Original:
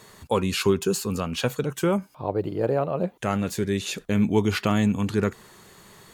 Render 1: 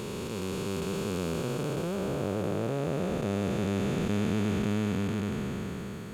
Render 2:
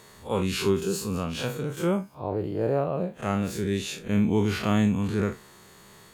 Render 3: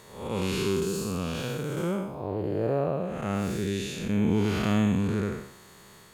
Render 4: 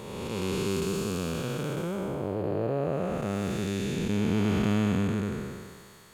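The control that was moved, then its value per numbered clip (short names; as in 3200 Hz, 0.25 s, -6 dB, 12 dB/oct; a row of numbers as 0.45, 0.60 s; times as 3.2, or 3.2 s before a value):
time blur, width: 1810, 85, 243, 606 ms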